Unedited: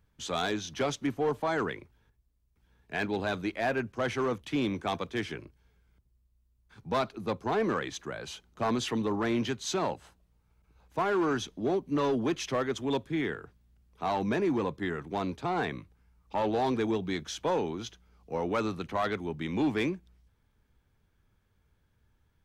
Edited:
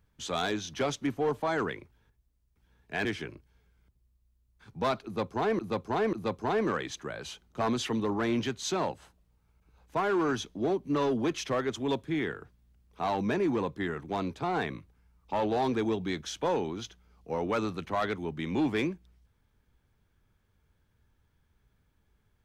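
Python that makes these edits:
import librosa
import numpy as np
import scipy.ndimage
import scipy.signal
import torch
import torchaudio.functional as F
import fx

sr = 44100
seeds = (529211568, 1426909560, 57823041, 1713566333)

y = fx.edit(x, sr, fx.cut(start_s=3.05, length_s=2.1),
    fx.repeat(start_s=7.15, length_s=0.54, count=3), tone=tone)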